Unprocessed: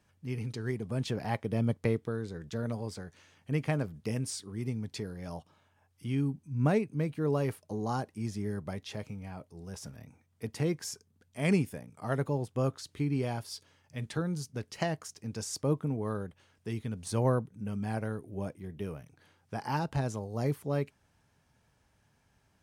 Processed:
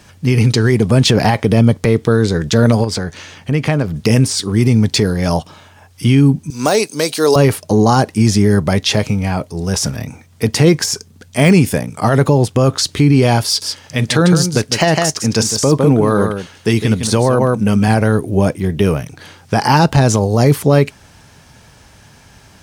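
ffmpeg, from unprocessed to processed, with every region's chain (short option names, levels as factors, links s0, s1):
-filter_complex "[0:a]asettb=1/sr,asplit=3[s0][s1][s2];[s0]atrim=end=2.844[s3];[s1]atrim=start=2.84:end=3.96,asetpts=PTS-STARTPTS,afade=t=in:d=0.004:c=qsin,afade=t=out:st=1.116:d=0.004:c=qsin,equalizer=f=11000:w=0.45:g=-5,acompressor=threshold=0.00891:ratio=2.5:attack=3.2:release=140:knee=1:detection=peak[s4];[s2]atrim=start=3.956[s5];[s3][s4]acrossfade=d=0.004:c1=hsin:c2=qsin[s6];[s6][s5]acrossfade=d=0.004:c1=qsin:c2=hsin,asettb=1/sr,asplit=3[s7][s8][s9];[s7]atrim=end=6.504[s10];[s8]atrim=start=6.5:end=7.36,asetpts=PTS-STARTPTS,afade=t=in:d=0.004:c=qsin,afade=t=out:st=0.856:d=0.004:c=qsin,highpass=520,highshelf=f=3300:t=q:w=1.5:g=11[s11];[s9]atrim=start=7.356[s12];[s10][s11]acrossfade=d=0.004:c1=hsin:c2=qsin[s13];[s13][s12]acrossfade=d=0.004:c1=qsin:c2=hsin,asettb=1/sr,asplit=3[s14][s15][s16];[s14]atrim=end=13.464[s17];[s15]atrim=start=13.46:end=17.88,asetpts=PTS-STARTPTS,afade=t=in:d=0.004:c=qsin,afade=t=out:st=4.416:d=0.004:c=qsin,lowshelf=f=110:g=-8.5,aecho=1:1:156:0.355,atrim=end_sample=194922[s18];[s16]atrim=start=17.876[s19];[s17][s18]acrossfade=d=0.004:c1=hsin:c2=qsin[s20];[s20][s19]acrossfade=d=0.004:c1=qsin:c2=hsin,deesser=1,equalizer=f=5100:w=0.69:g=5,alimiter=level_in=20:limit=0.891:release=50:level=0:latency=1,volume=0.891"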